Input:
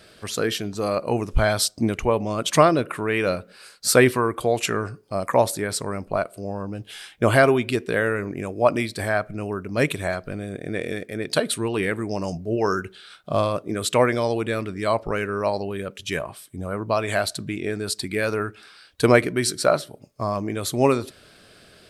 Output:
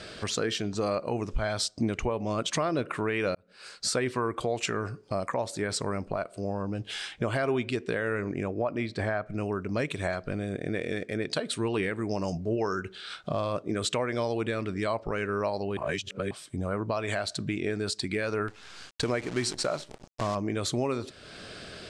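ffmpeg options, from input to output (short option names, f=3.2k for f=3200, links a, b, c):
-filter_complex "[0:a]asettb=1/sr,asplit=3[a][b][c];[a]atrim=end=8.434[d];[b]atrim=start=8.43:end=9.26,asetpts=PTS-STARTPTS,afade=t=in:d=0.004:c=qsin,afade=t=out:st=0.826:d=0.004:c=qsin,aemphasis=mode=reproduction:type=75fm[e];[c]atrim=start=9.256[f];[d][e]acrossfade=d=0.004:c1=hsin:c2=qsin[g];[g][f]acrossfade=d=0.004:c1=qsin:c2=hsin,asettb=1/sr,asplit=3[h][i][j];[h]atrim=end=18.484[k];[i]atrim=start=18.48:end=20.35,asetpts=PTS-STARTPTS,afade=t=in:d=0.004:c=qsin,afade=t=out:st=1.866:d=0.004:c=qsin,acrusher=bits=6:dc=4:mix=0:aa=0.000001[l];[j]atrim=start=20.346[m];[k][l]acrossfade=d=0.004:c1=hsin:c2=qsin[n];[n][m]acrossfade=d=0.004:c1=qsin:c2=hsin,asplit=4[o][p][q][r];[o]atrim=end=3.35,asetpts=PTS-STARTPTS,afade=t=out:st=3.346:d=0.004:c=hsin[s];[p]atrim=start=3.35:end=15.772,asetpts=PTS-STARTPTS,afade=t=in:d=0.59[t];[q]atrim=start=15.768:end=16.312,asetpts=PTS-STARTPTS,areverse[u];[r]atrim=start=16.308[v];[s][t]concat=n=2:v=0:a=1[w];[w][u]acrossfade=d=0.004:c1=hsin:c2=hsin[x];[x][v]acrossfade=d=0.004:c1=hsin:c2=hsin,lowpass=f=8k:w=0.5412,lowpass=f=8k:w=1.3066,acompressor=threshold=-43dB:ratio=2,alimiter=level_in=1.5dB:limit=-24dB:level=0:latency=1:release=163,volume=-1.5dB,volume=7.5dB"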